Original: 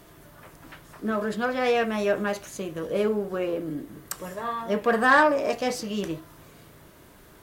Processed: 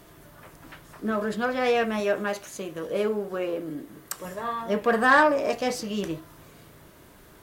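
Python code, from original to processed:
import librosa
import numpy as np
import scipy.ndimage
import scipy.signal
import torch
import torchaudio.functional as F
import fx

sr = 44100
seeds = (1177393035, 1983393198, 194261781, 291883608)

y = fx.low_shelf(x, sr, hz=180.0, db=-8.0, at=(2.0, 4.25))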